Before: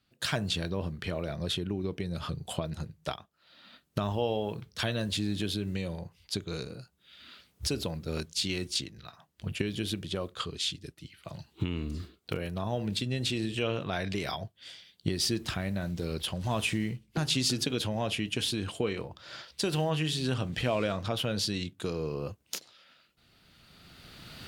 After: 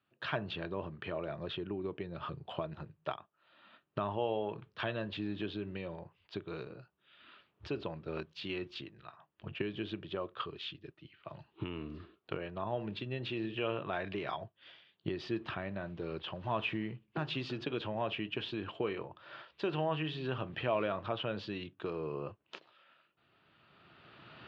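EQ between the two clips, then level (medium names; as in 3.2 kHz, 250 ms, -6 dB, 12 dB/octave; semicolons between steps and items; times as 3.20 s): cabinet simulation 120–2500 Hz, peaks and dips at 180 Hz -6 dB, 250 Hz -8 dB, 490 Hz -6 dB, 750 Hz -4 dB, 1.5 kHz -4 dB, 2.1 kHz -9 dB; bass shelf 180 Hz -10 dB; +2.0 dB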